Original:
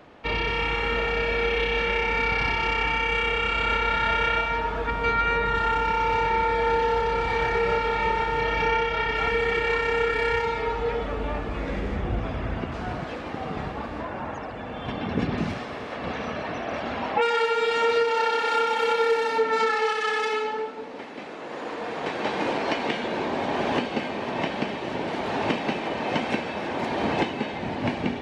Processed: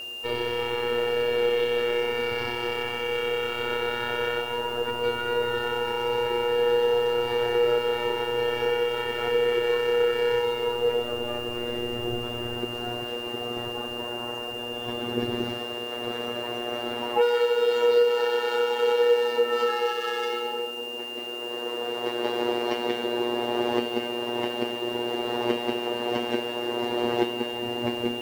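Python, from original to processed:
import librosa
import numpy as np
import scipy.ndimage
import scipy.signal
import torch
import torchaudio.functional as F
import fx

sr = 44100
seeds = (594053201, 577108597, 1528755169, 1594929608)

y = fx.robotise(x, sr, hz=120.0)
y = fx.dmg_noise_colour(y, sr, seeds[0], colour='white', level_db=-51.0)
y = fx.graphic_eq_15(y, sr, hz=(160, 400, 2500), db=(-9, 11, -7))
y = y + 10.0 ** (-32.0 / 20.0) * np.sin(2.0 * np.pi * 2800.0 * np.arange(len(y)) / sr)
y = y * librosa.db_to_amplitude(-2.0)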